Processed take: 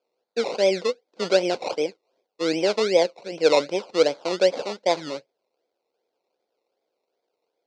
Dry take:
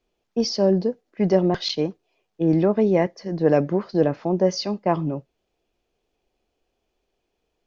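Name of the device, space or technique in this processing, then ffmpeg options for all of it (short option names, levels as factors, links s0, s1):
circuit-bent sampling toy: -af "acrusher=samples=22:mix=1:aa=0.000001:lfo=1:lforange=13.2:lforate=2.6,highpass=460,equalizer=f=510:t=q:w=4:g=8,equalizer=f=1200:t=q:w=4:g=-8,equalizer=f=1800:t=q:w=4:g=-9,equalizer=f=3100:t=q:w=4:g=-4,equalizer=f=4400:t=q:w=4:g=5,lowpass=f=5900:w=0.5412,lowpass=f=5900:w=1.3066"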